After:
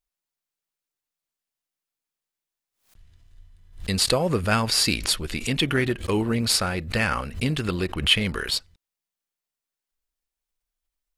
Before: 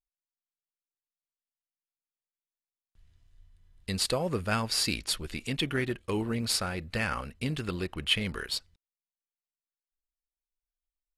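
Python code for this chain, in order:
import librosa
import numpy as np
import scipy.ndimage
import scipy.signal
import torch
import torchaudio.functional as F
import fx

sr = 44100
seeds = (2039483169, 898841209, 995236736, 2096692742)

y = fx.pre_swell(x, sr, db_per_s=140.0)
y = y * librosa.db_to_amplitude(7.0)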